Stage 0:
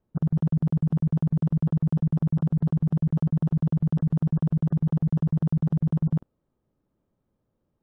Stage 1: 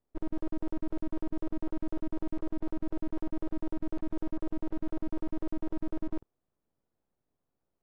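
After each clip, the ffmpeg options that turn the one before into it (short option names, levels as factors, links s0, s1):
-af "aeval=exprs='abs(val(0))':c=same,volume=0.422"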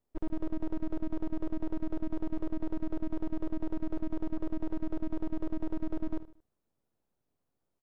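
-af "aecho=1:1:76|152|228:0.15|0.0598|0.0239"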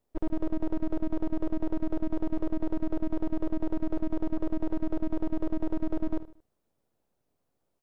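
-af "equalizer=f=580:w=1.3:g=3.5,volume=1.5"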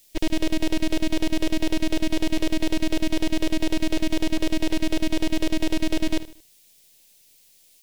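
-af "aexciter=amount=12.3:drive=6.5:freq=2000,volume=2"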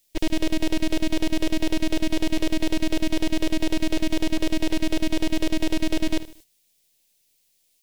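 -af "agate=range=0.316:threshold=0.00447:ratio=16:detection=peak"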